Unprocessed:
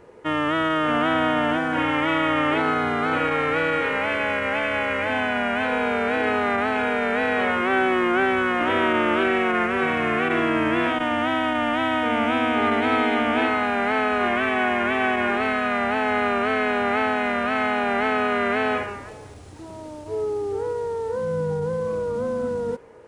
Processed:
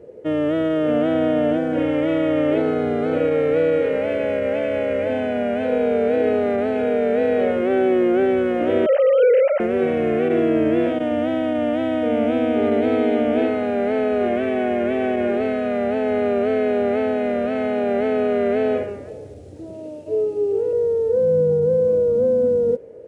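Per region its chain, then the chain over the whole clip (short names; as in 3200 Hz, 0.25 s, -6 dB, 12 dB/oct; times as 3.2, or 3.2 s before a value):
8.86–9.6 sine-wave speech + HPF 350 Hz
19.73–20.73 HPF 130 Hz + bell 2700 Hz +9 dB 0.22 oct + notches 60/120/180/240/300/360/420/480/540/600 Hz
whole clip: HPF 58 Hz; resonant low shelf 740 Hz +10 dB, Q 3; gain -7.5 dB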